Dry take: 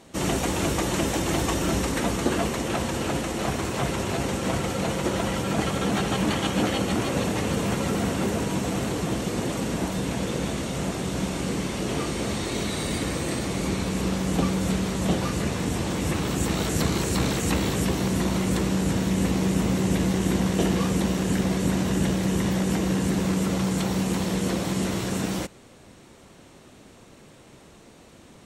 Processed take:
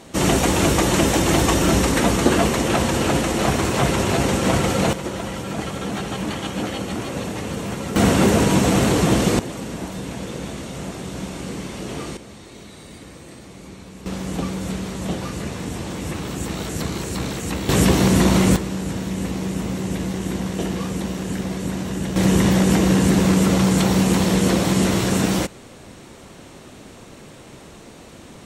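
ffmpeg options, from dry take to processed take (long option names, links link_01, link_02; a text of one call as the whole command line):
ffmpeg -i in.wav -af "asetnsamples=nb_out_samples=441:pad=0,asendcmd='4.93 volume volume -2dB;7.96 volume volume 10dB;9.39 volume volume -2.5dB;12.17 volume volume -13dB;14.06 volume volume -2dB;17.69 volume volume 9dB;18.56 volume volume -2dB;22.16 volume volume 8dB',volume=7.5dB" out.wav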